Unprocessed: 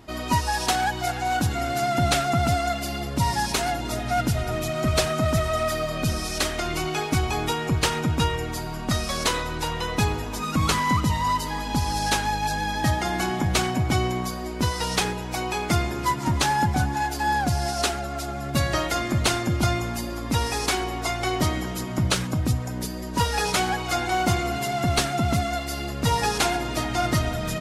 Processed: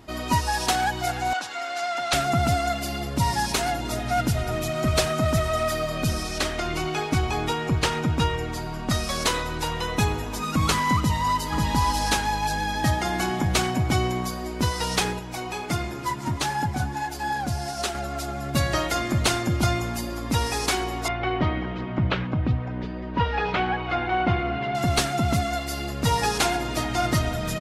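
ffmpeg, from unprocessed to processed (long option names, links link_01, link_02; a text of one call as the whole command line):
ffmpeg -i in.wav -filter_complex "[0:a]asettb=1/sr,asplit=3[link_01][link_02][link_03];[link_01]atrim=end=1.334[link_04];[link_02]atrim=start=1.33:end=2.13,asetpts=PTS-STARTPTS,afade=type=in:duration=0.004:curve=qsin,afade=type=out:start_time=0.796:duration=0.004:curve=qsin,highpass=780,lowpass=6100[link_05];[link_03]atrim=start=2.126[link_06];[link_04][link_05]acrossfade=duration=0.004:curve1=hsin:curve2=qsin[link_07];[link_07][link_06]acrossfade=duration=0.004:curve1=qsin:curve2=hsin,asettb=1/sr,asplit=3[link_08][link_09][link_10];[link_08]atrim=end=6.234[link_11];[link_09]atrim=start=6.23:end=8.9,asetpts=PTS-STARTPTS,afade=type=in:duration=0.004:curve=qsin,afade=type=out:start_time=2.666:duration=0.004:curve=qsin,highshelf=frequency=7600:gain=-8.5[link_12];[link_10]atrim=start=8.896[link_13];[link_11][link_12]acrossfade=duration=0.004:curve1=hsin:curve2=qsin[link_14];[link_14][link_13]acrossfade=duration=0.004:curve1=qsin:curve2=hsin,asettb=1/sr,asplit=3[link_15][link_16][link_17];[link_15]atrim=end=9.884[link_18];[link_16]atrim=start=9.88:end=10.3,asetpts=PTS-STARTPTS,afade=type=in:duration=0.004:curve=qsin,afade=type=out:start_time=0.416:duration=0.004:curve=qsin,bandreject=frequency=4800:width=12[link_19];[link_17]atrim=start=10.296[link_20];[link_18][link_19]acrossfade=duration=0.004:curve1=hsin:curve2=qsin[link_21];[link_21][link_20]acrossfade=duration=0.004:curve1=qsin:curve2=hsin,asplit=2[link_22][link_23];[link_23]afade=type=in:start_time=10.98:duration=0.01,afade=type=out:start_time=11.58:duration=0.01,aecho=0:1:540|1080|1620:0.707946|0.141589|0.0283178[link_24];[link_22][link_24]amix=inputs=2:normalize=0,asettb=1/sr,asplit=3[link_25][link_26][link_27];[link_25]atrim=end=15.194[link_28];[link_26]atrim=start=15.19:end=17.95,asetpts=PTS-STARTPTS,afade=type=in:duration=0.004:curve=qsin,afade=type=out:start_time=2.756:duration=0.004:curve=qsin,flanger=delay=5.1:depth=4.7:regen=-49:speed=1.5:shape=triangular[link_29];[link_27]atrim=start=17.946[link_30];[link_28][link_29]acrossfade=duration=0.004:curve1=hsin:curve2=qsin[link_31];[link_31][link_30]acrossfade=duration=0.004:curve1=qsin:curve2=hsin,asettb=1/sr,asplit=3[link_32][link_33][link_34];[link_32]atrim=end=21.084[link_35];[link_33]atrim=start=21.08:end=24.75,asetpts=PTS-STARTPTS,afade=type=in:duration=0.004:curve=qsin,afade=type=out:start_time=3.666:duration=0.004:curve=qsin,lowpass=frequency=3000:width=0.5412,lowpass=frequency=3000:width=1.3066[link_36];[link_34]atrim=start=24.746[link_37];[link_35][link_36]acrossfade=duration=0.004:curve1=hsin:curve2=qsin[link_38];[link_38][link_37]acrossfade=duration=0.004:curve1=qsin:curve2=hsin" out.wav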